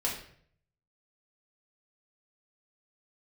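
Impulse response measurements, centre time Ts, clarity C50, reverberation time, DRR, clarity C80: 32 ms, 6.0 dB, 0.60 s, −4.0 dB, 9.0 dB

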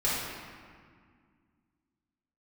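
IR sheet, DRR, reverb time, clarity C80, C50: −10.0 dB, 1.9 s, 0.5 dB, −2.0 dB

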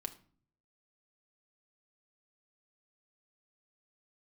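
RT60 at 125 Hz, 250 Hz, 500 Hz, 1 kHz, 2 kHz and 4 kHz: 0.90, 0.70, 0.45, 0.45, 0.40, 0.35 seconds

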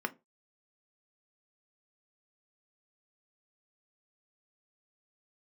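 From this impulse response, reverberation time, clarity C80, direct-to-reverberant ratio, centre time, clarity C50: 0.25 s, 31.0 dB, 6.5 dB, 3 ms, 23.0 dB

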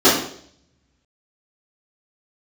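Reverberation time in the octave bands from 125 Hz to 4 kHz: 1.5, 0.65, 0.65, 0.55, 0.55, 0.60 seconds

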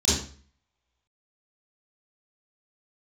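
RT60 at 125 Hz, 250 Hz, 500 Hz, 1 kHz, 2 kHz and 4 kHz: 0.50, 0.50, 0.45, 0.45, 0.40, 0.40 seconds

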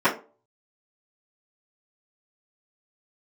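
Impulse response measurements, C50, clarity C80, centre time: 12.0 dB, 17.5 dB, 17 ms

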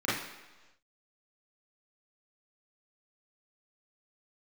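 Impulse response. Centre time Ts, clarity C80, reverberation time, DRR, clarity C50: 63 ms, 6.0 dB, 1.2 s, −10.0 dB, 1.0 dB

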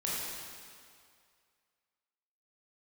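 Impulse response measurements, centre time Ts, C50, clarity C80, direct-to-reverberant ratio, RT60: 139 ms, −2.5 dB, −1.0 dB, −7.0 dB, 2.2 s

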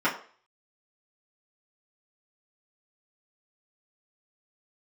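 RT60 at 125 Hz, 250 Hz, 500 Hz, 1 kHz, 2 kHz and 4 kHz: 0.25, 0.35, 0.45, 0.45, 0.40, 0.40 seconds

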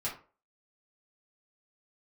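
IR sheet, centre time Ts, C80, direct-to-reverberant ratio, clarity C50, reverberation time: 24 ms, 14.0 dB, −8.0 dB, 8.0 dB, 0.40 s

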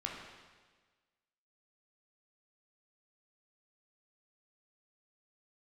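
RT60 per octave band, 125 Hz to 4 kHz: 1.4, 1.4, 1.4, 1.4, 1.4, 1.4 seconds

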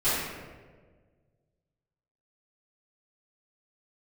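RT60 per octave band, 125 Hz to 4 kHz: 2.3, 1.8, 1.8, 1.2, 1.1, 0.85 seconds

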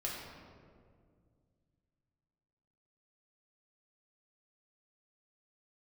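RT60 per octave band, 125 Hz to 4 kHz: 3.3, 2.8, 2.3, 1.8, 1.4, 1.0 seconds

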